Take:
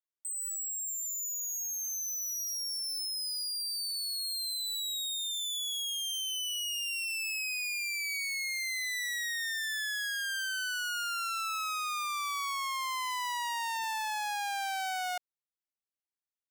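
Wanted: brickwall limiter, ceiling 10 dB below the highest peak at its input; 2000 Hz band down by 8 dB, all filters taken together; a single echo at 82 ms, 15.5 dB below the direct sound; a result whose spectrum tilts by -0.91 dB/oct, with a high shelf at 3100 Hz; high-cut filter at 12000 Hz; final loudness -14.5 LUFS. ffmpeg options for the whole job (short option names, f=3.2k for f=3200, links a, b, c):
-af "lowpass=12k,equalizer=f=2k:t=o:g=-8.5,highshelf=f=3.1k:g=-5.5,alimiter=level_in=17dB:limit=-24dB:level=0:latency=1,volume=-17dB,aecho=1:1:82:0.168,volume=29.5dB"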